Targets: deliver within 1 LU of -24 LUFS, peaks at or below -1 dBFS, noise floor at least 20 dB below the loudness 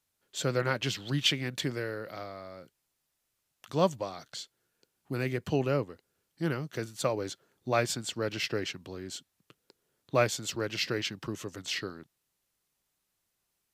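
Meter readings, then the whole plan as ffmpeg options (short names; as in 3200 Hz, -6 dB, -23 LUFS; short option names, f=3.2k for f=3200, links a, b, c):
loudness -32.5 LUFS; peak -11.0 dBFS; loudness target -24.0 LUFS
-> -af "volume=8.5dB"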